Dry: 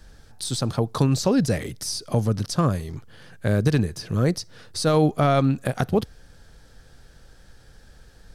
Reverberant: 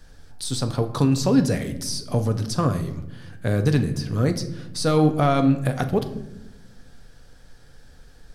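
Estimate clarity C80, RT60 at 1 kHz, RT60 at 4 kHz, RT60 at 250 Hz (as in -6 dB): 14.0 dB, 0.75 s, 0.55 s, 1.6 s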